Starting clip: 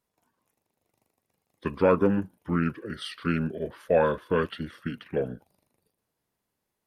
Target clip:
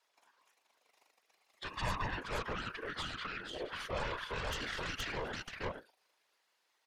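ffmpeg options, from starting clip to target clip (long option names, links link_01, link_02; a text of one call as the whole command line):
ffmpeg -i in.wav -filter_complex "[0:a]tiltshelf=frequency=650:gain=-9.5,asettb=1/sr,asplit=3[link_01][link_02][link_03];[link_01]atrim=end=2.884[link_04];[link_02]atrim=start=2.88:end=3.76,asetpts=PTS-STARTPTS,afade=type=in:duration=0.004:curve=qsin,afade=type=out:start_time=0.876:duration=0.004:curve=qsin,acompressor=threshold=-37dB:ratio=8[link_05];[link_03]atrim=start=3.756[link_06];[link_04][link_05]acrossfade=duration=0.004:curve1=hsin:curve2=qsin[link_07];[link_07][link_06]acrossfade=duration=0.004:curve1=qsin:curve2=hsin,acrossover=split=330 6300:gain=0.0794 1 0.126[link_08][link_09][link_10];[link_08][link_09][link_10]amix=inputs=3:normalize=0,asettb=1/sr,asplit=3[link_11][link_12][link_13];[link_11]atrim=end=4.484[link_14];[link_12]atrim=start=4.48:end=5.32,asetpts=PTS-STARTPTS,afade=type=in:duration=0.004:curve=qsin,afade=type=out:start_time=0.836:duration=0.004:curve=qsin,acontrast=77[link_15];[link_13]atrim=start=5.316[link_16];[link_14][link_15]acrossfade=duration=0.004:curve1=hsin:curve2=qsin[link_17];[link_17][link_16]acrossfade=duration=0.004:curve1=qsin:curve2=hsin,aeval=exprs='0.398*(cos(1*acos(clip(val(0)/0.398,-1,1)))-cos(1*PI/2))+0.1*(cos(8*acos(clip(val(0)/0.398,-1,1)))-cos(8*PI/2))':channel_layout=same,aecho=1:1:472:0.282,alimiter=level_in=6dB:limit=-24dB:level=0:latency=1:release=48,volume=-6dB,asettb=1/sr,asplit=3[link_18][link_19][link_20];[link_18]atrim=end=1.744[link_21];[link_19]atrim=start=1.74:end=2.18,asetpts=PTS-STARTPTS,afade=type=in:duration=0.004:curve=qsin,afade=type=out:start_time=0.436:duration=0.004:curve=qsin,aecho=1:1:1.1:0.8,atrim=end_sample=19404[link_22];[link_20]atrim=start=2.176[link_23];[link_21][link_22]acrossfade=duration=0.004:curve1=hsin:curve2=qsin[link_24];[link_24][link_23]acrossfade=duration=0.004:curve1=qsin:curve2=hsin,afftfilt=real='hypot(re,im)*cos(2*PI*random(0))':imag='hypot(re,im)*sin(2*PI*random(1))':win_size=512:overlap=0.75,volume=8.5dB" out.wav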